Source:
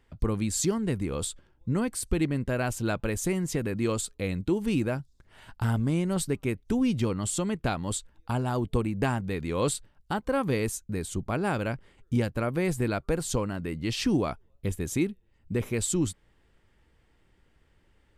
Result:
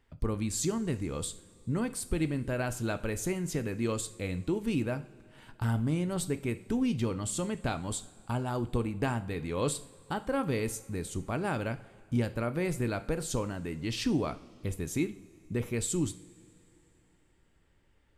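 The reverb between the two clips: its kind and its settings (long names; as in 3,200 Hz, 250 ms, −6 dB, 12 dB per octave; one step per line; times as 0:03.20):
coupled-rooms reverb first 0.44 s, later 3.2 s, from −19 dB, DRR 10 dB
level −4 dB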